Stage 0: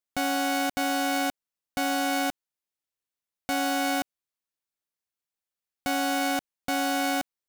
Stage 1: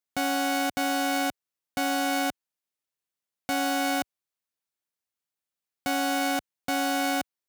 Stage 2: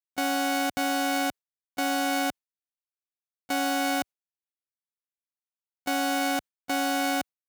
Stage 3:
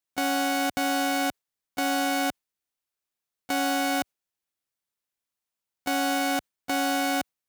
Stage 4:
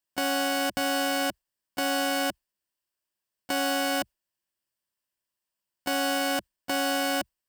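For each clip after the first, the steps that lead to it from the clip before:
HPF 67 Hz
gate with hold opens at -18 dBFS
limiter -24.5 dBFS, peak gain reduction 7.5 dB; gain +7.5 dB
ripple EQ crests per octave 1.3, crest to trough 7 dB

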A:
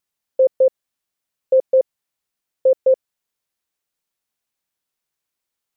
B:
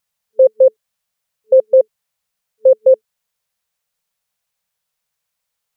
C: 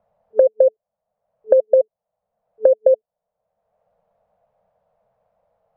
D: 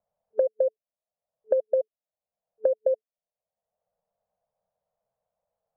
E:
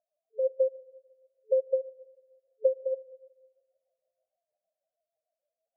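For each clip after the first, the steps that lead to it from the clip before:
FFT band-reject 220–440 Hz; gain +5 dB
compressor 6:1, threshold -13 dBFS, peak gain reduction 7 dB; synth low-pass 650 Hz, resonance Q 4.9; three-band squash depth 70%; gain -4.5 dB
upward expander 1.5:1, over -25 dBFS; gain -9 dB
spectral contrast raised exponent 3.6; on a send at -16.5 dB: reverb RT60 1.4 s, pre-delay 6 ms; on the sum: tremolo 6.4 Hz, depth 63%

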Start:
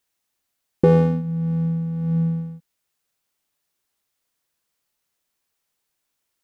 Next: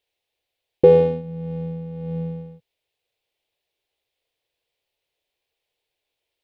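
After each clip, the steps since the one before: EQ curve 110 Hz 0 dB, 210 Hz -12 dB, 460 Hz +7 dB, 790 Hz +1 dB, 1300 Hz -11 dB, 2400 Hz +3 dB, 3600 Hz +3 dB, 6300 Hz -11 dB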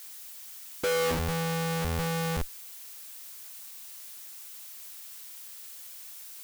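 Schmitt trigger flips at -28.5 dBFS; bell 150 Hz -6.5 dB 1.4 oct; added noise blue -45 dBFS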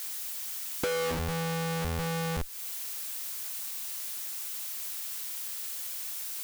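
compressor 5:1, threshold -38 dBFS, peak gain reduction 11.5 dB; gain +8 dB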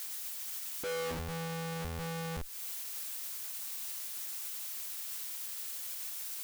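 limiter -28 dBFS, peak gain reduction 11 dB; gain -2.5 dB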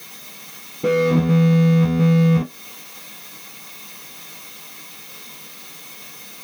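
reverb RT60 0.25 s, pre-delay 3 ms, DRR -6 dB

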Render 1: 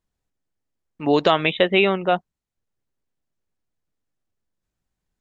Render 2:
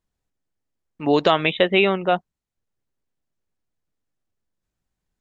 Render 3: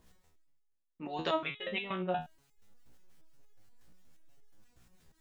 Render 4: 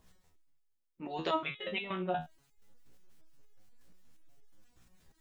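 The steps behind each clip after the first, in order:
nothing audible
reverse; upward compressor, threshold -26 dBFS; reverse; harmonic tremolo 5.9 Hz, depth 50%, crossover 1000 Hz; stepped resonator 8.4 Hz 61–420 Hz; gain -2 dB
bin magnitudes rounded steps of 15 dB

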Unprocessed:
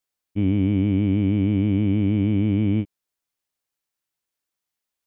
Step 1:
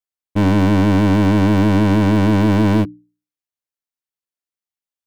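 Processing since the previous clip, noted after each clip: sample leveller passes 5; notches 60/120/180/240/300 Hz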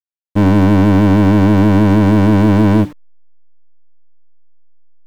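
level-crossing sampler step -33.5 dBFS; high shelf 2600 Hz -8 dB; gain +4 dB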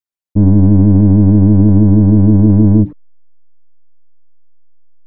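formant sharpening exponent 2; gain +2.5 dB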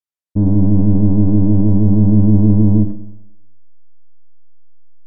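treble ducked by the level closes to 1300 Hz, closed at -6 dBFS; Schroeder reverb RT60 0.87 s, combs from 26 ms, DRR 9 dB; gain -4.5 dB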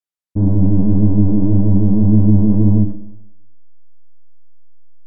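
flange 1.8 Hz, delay 7.2 ms, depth 8.4 ms, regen -33%; gain +2.5 dB

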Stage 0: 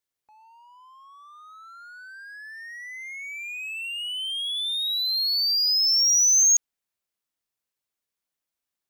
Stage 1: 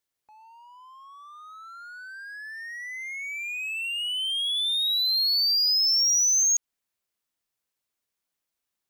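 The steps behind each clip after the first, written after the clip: compressor, threshold -22 dBFS, peak gain reduction 6.5 dB; gain +2 dB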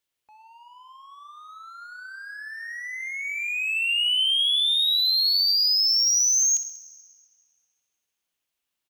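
bell 2900 Hz +6.5 dB 0.67 oct; on a send: feedback echo 64 ms, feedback 52%, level -12.5 dB; on the sum: plate-style reverb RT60 3.1 s, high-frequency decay 0.55×, DRR 13.5 dB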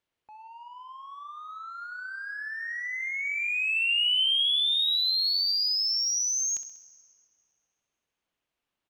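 LPF 1400 Hz 6 dB/oct; gain +5.5 dB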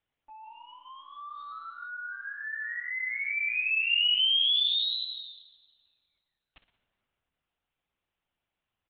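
monotone LPC vocoder at 8 kHz 290 Hz; AAC 48 kbps 22050 Hz

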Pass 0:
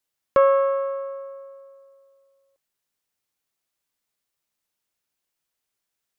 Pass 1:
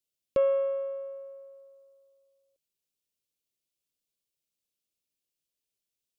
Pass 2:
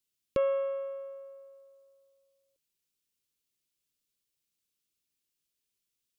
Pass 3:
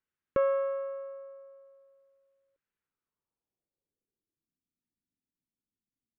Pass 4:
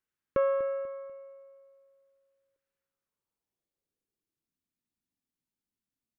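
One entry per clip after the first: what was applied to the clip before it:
band shelf 1200 Hz -14.5 dB; gain -5.5 dB
bell 670 Hz -12 dB 0.64 oct; gain +3 dB
low-pass sweep 1600 Hz -> 250 Hz, 2.8–4.57
feedback echo 0.245 s, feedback 37%, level -15.5 dB

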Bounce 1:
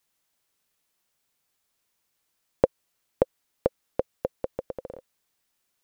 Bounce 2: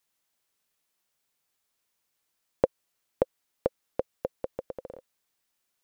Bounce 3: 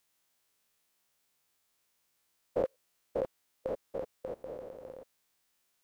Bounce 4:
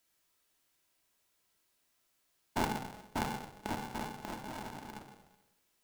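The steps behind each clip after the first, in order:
low shelf 220 Hz -3 dB; gain -2.5 dB
stepped spectrum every 0.1 s; gain +4 dB
reverb RT60 0.80 s, pre-delay 3 ms, DRR 0.5 dB; polarity switched at an audio rate 320 Hz; gain -2 dB

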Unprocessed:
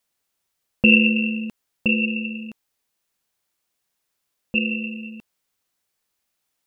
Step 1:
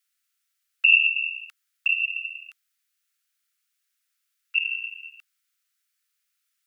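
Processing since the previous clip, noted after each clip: Chebyshev high-pass 1300 Hz, order 5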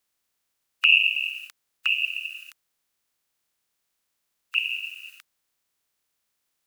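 spectral limiter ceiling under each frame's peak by 28 dB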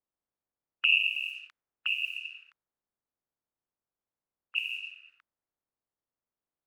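low-pass opened by the level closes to 930 Hz, open at -23 dBFS; gain -6.5 dB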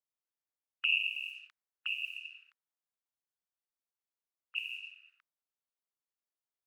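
low shelf 480 Hz -11.5 dB; gain -5.5 dB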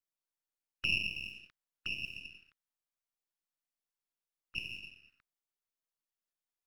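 half-wave gain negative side -7 dB

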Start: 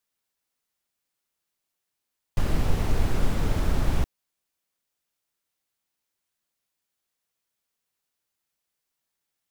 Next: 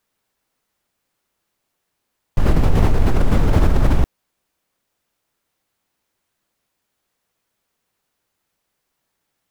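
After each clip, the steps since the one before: high shelf 2200 Hz -9 dB; in parallel at +0.5 dB: negative-ratio compressor -25 dBFS, ratio -0.5; on the sum: gain +5 dB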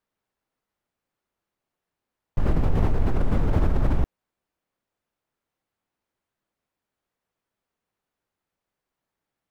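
high shelf 2900 Hz -10 dB; gain -6.5 dB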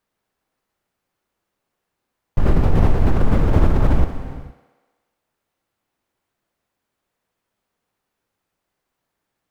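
thinning echo 62 ms, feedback 74%, high-pass 160 Hz, level -12 dB; non-linear reverb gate 0.49 s flat, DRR 11 dB; gain +6 dB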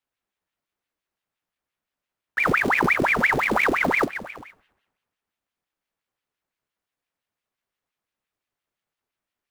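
short-mantissa float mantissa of 2-bit; flange 0.24 Hz, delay 8.3 ms, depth 7.6 ms, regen -49%; ring modulator with a swept carrier 1300 Hz, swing 85%, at 5.8 Hz; gain -2 dB

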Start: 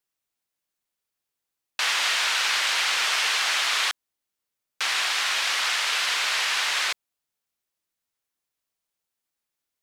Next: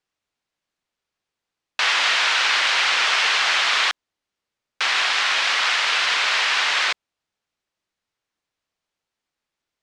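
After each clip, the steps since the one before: air absorption 100 m; gain +6.5 dB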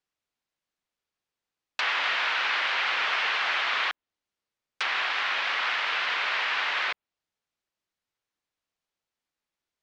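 treble ducked by the level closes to 2900 Hz, closed at -20.5 dBFS; gain -5.5 dB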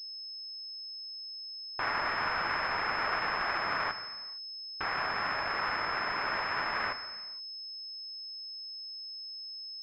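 median filter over 15 samples; non-linear reverb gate 0.49 s falling, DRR 8.5 dB; pulse-width modulation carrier 5200 Hz

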